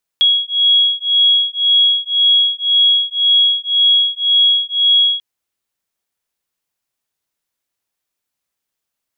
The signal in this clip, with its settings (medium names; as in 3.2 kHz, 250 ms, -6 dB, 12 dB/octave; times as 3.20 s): beating tones 3.32 kHz, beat 1.9 Hz, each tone -13.5 dBFS 4.99 s